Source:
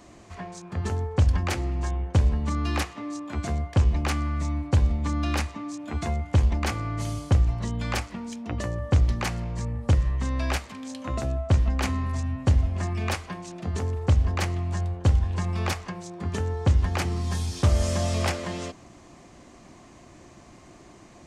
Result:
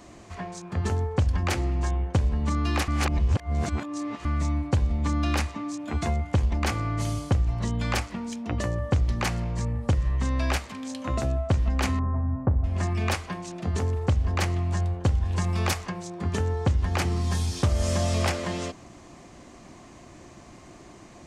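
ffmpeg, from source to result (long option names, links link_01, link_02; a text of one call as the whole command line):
ffmpeg -i in.wav -filter_complex "[0:a]asettb=1/sr,asplit=3[link_01][link_02][link_03];[link_01]atrim=end=11.994[link_04];[link_02]atrim=start=11.99:end=12.64,asetpts=PTS-STARTPTS,afade=type=in:duration=0.004:curve=qsin,afade=type=out:start_time=0.646:duration=0.004:curve=qsin,lowpass=frequency=1300:width=0.5412,lowpass=frequency=1300:width=1.3066[link_05];[link_03]atrim=start=12.636[link_06];[link_04][link_05]acrossfade=duration=0.004:curve1=hsin:curve2=qsin[link_07];[link_07][link_06]acrossfade=duration=0.004:curve1=qsin:curve2=hsin,asettb=1/sr,asplit=3[link_08][link_09][link_10];[link_08]atrim=end=15.254[link_11];[link_09]atrim=start=15.25:end=15.86,asetpts=PTS-STARTPTS,afade=type=in:duration=0.004:curve=qsin,afade=type=out:start_time=0.606:duration=0.004:curve=qsin,highshelf=frequency=6100:gain=7[link_12];[link_10]atrim=start=15.856[link_13];[link_11][link_12]acrossfade=duration=0.004:curve1=hsin:curve2=qsin[link_14];[link_14][link_13]acrossfade=duration=0.004:curve1=qsin:curve2=hsin,asplit=3[link_15][link_16][link_17];[link_15]atrim=end=2.882[link_18];[link_16]atrim=start=2.878:end=4.252,asetpts=PTS-STARTPTS,areverse[link_19];[link_17]atrim=start=4.248[link_20];[link_18][link_19]acrossfade=duration=0.004:curve1=hsin:curve2=hsin[link_21];[link_21][link_20]acrossfade=duration=0.004:curve1=hsin:curve2=hsin,acompressor=threshold=-21dB:ratio=6,volume=2dB" out.wav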